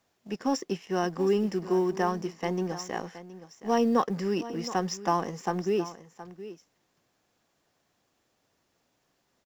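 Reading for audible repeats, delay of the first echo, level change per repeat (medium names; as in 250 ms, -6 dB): 1, 720 ms, no regular repeats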